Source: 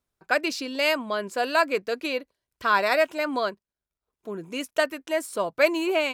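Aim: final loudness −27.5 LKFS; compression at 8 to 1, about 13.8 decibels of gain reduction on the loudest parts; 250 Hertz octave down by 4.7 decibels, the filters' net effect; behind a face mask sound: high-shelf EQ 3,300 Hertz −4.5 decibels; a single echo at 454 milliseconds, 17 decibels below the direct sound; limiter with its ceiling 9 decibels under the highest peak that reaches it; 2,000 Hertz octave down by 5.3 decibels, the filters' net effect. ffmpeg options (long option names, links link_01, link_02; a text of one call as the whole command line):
ffmpeg -i in.wav -af "equalizer=frequency=250:width_type=o:gain=-6.5,equalizer=frequency=2000:width_type=o:gain=-5.5,acompressor=threshold=-31dB:ratio=8,alimiter=level_in=4.5dB:limit=-24dB:level=0:latency=1,volume=-4.5dB,highshelf=frequency=3300:gain=-4.5,aecho=1:1:454:0.141,volume=12.5dB" out.wav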